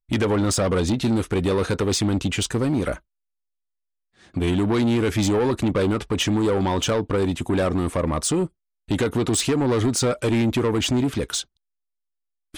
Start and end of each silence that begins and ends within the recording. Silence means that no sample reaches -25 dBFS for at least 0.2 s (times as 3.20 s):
2.94–4.37 s
8.46–8.91 s